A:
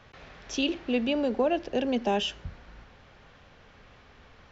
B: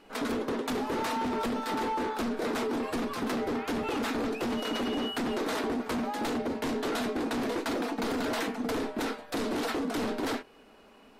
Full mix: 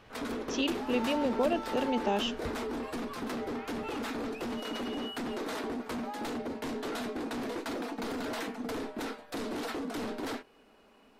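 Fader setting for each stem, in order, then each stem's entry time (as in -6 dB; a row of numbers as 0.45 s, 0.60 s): -3.5 dB, -5.0 dB; 0.00 s, 0.00 s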